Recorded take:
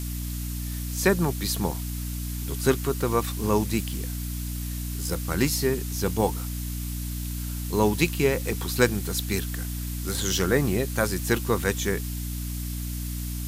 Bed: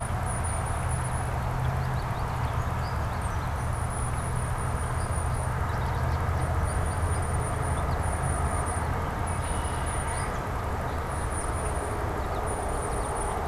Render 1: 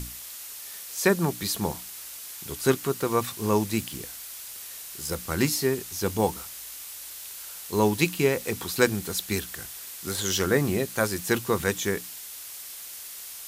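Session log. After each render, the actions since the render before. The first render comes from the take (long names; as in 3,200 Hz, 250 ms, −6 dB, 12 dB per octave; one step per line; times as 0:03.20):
mains-hum notches 60/120/180/240/300 Hz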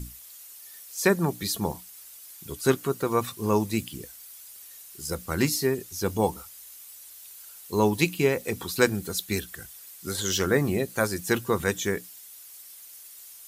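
broadband denoise 11 dB, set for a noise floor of −41 dBFS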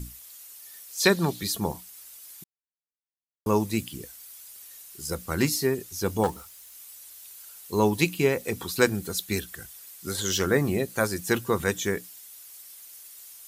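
0:01.00–0:01.41: parametric band 3,900 Hz +14 dB 0.86 octaves
0:02.44–0:03.46: silence
0:06.23–0:06.75: phase distortion by the signal itself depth 0.24 ms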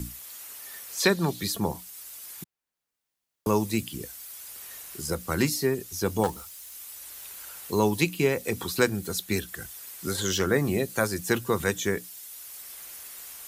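multiband upward and downward compressor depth 40%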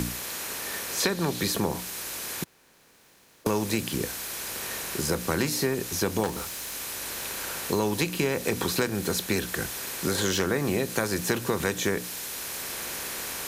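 compressor on every frequency bin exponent 0.6
downward compressor 5 to 1, threshold −22 dBFS, peak gain reduction 8.5 dB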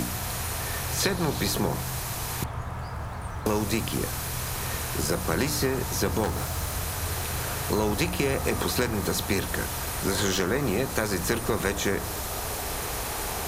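mix in bed −5 dB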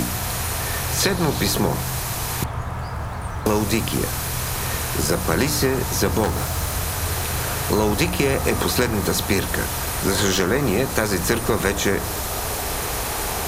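level +6 dB
brickwall limiter −2 dBFS, peak gain reduction 1 dB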